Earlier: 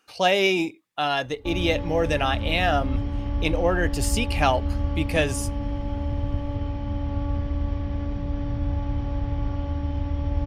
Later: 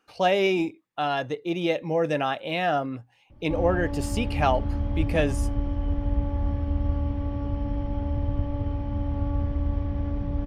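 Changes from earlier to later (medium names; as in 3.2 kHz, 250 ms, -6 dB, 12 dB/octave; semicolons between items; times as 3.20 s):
background: entry +2.05 s; master: add treble shelf 2.2 kHz -10 dB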